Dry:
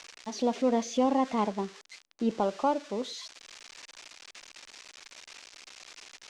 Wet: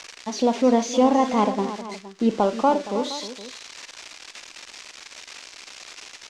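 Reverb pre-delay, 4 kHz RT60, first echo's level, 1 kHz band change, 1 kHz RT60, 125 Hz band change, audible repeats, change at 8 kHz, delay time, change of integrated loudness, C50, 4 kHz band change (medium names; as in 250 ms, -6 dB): no reverb, no reverb, -14.0 dB, +8.0 dB, no reverb, +8.0 dB, 3, +8.0 dB, 40 ms, +8.0 dB, no reverb, +8.0 dB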